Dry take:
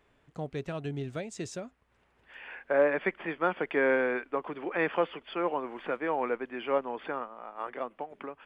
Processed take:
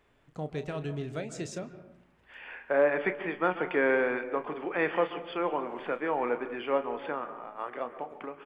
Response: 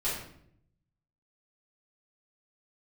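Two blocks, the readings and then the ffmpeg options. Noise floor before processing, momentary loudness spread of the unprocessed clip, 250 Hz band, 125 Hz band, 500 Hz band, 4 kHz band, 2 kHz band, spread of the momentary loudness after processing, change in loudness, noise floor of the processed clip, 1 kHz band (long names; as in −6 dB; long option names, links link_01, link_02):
−69 dBFS, 15 LU, +0.5 dB, +1.0 dB, +0.5 dB, +0.5 dB, +0.5 dB, 15 LU, +0.5 dB, −65 dBFS, +0.5 dB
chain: -filter_complex "[0:a]asplit=2[link_01][link_02];[link_02]adelay=33,volume=-12dB[link_03];[link_01][link_03]amix=inputs=2:normalize=0,asplit=2[link_04][link_05];[1:a]atrim=start_sample=2205,lowpass=2600,adelay=126[link_06];[link_05][link_06]afir=irnorm=-1:irlink=0,volume=-17.5dB[link_07];[link_04][link_07]amix=inputs=2:normalize=0"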